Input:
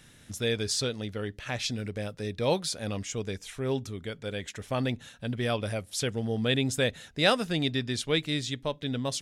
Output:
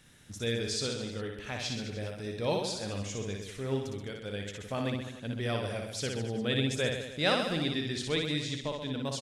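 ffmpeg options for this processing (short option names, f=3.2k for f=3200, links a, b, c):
-filter_complex "[0:a]acrossover=split=9400[a][b];[b]acompressor=threshold=-56dB:ratio=4:attack=1:release=60[c];[a][c]amix=inputs=2:normalize=0,aecho=1:1:60|129|208.4|299.6|404.5:0.631|0.398|0.251|0.158|0.1,volume=-5dB"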